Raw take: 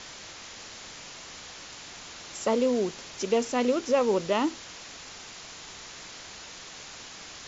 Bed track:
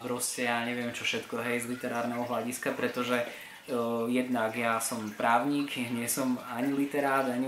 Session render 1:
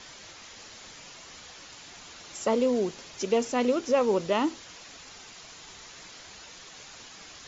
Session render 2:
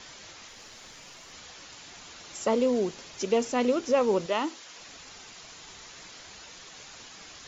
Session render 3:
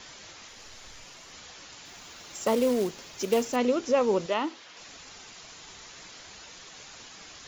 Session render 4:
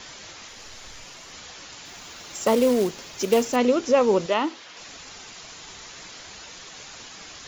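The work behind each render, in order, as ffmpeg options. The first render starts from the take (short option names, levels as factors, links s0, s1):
-af "afftdn=nr=6:nf=-45"
-filter_complex "[0:a]asettb=1/sr,asplit=3[s0][s1][s2];[s0]atrim=end=0.484[s3];[s1]atrim=start=0.48:end=1.33,asetpts=PTS-STARTPTS,afade=t=in:d=0.004:c=qsin,afade=t=out:st=0.846:d=0.004:c=qsin,aeval=exprs='if(lt(val(0),0),0.708*val(0),val(0))':c=same[s4];[s2]atrim=start=1.326[s5];[s3][s4]acrossfade=d=0.004:c1=hsin:c2=qsin[s6];[s6][s5]acrossfade=d=0.004:c1=qsin:c2=hsin,asettb=1/sr,asplit=3[s7][s8][s9];[s7]atrim=end=4.264[s10];[s8]atrim=start=4.26:end=4.76,asetpts=PTS-STARTPTS,afade=t=in:d=0.004:c=qsin,afade=t=out:st=0.496:d=0.004:c=qsin,highpass=f=480:p=1[s11];[s9]atrim=start=4.756[s12];[s10][s11]acrossfade=d=0.004:c1=hsin:c2=qsin[s13];[s13][s12]acrossfade=d=0.004:c1=qsin:c2=hsin"
-filter_complex "[0:a]asplit=3[s0][s1][s2];[s0]afade=t=out:st=0.58:d=0.02[s3];[s1]asubboost=boost=11.5:cutoff=81,afade=t=in:st=0.58:d=0.02,afade=t=out:st=1.04:d=0.02[s4];[s2]afade=t=in:st=1.04:d=0.02[s5];[s3][s4][s5]amix=inputs=3:normalize=0,asettb=1/sr,asplit=3[s6][s7][s8];[s6]atrim=end=1.854[s9];[s7]atrim=start=1.85:end=3.56,asetpts=PTS-STARTPTS,afade=t=in:d=0.004:c=qsin,afade=t=out:st=1.706:d=0.004:c=qsin,acrusher=bits=4:mode=log:mix=0:aa=0.000001[s10];[s8]atrim=start=3.556[s11];[s9][s10]acrossfade=d=0.004:c1=hsin:c2=qsin[s12];[s12][s11]acrossfade=d=0.004:c1=qsin:c2=hsin,asettb=1/sr,asplit=3[s13][s14][s15];[s13]atrim=end=4.344[s16];[s14]atrim=start=4.34:end=4.77,asetpts=PTS-STARTPTS,afade=t=in:d=0.004:c=qsin,afade=t=out:st=0.426:d=0.004:c=qsin,lowpass=4600[s17];[s15]atrim=start=4.766[s18];[s16][s17]acrossfade=d=0.004:c1=hsin:c2=qsin[s19];[s19][s18]acrossfade=d=0.004:c1=qsin:c2=hsin"
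-af "volume=1.78"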